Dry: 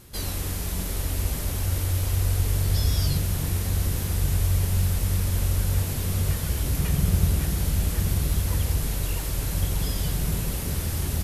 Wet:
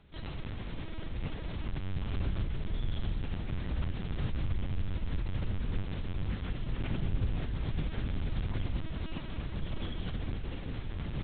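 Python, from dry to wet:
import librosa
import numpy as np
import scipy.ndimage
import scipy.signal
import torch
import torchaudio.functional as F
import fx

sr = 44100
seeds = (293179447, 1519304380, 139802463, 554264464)

y = fx.echo_feedback(x, sr, ms=229, feedback_pct=23, wet_db=-15.5)
y = fx.lpc_vocoder(y, sr, seeds[0], excitation='pitch_kept', order=8)
y = fx.doppler_dist(y, sr, depth_ms=0.13)
y = y * 10.0 ** (-9.0 / 20.0)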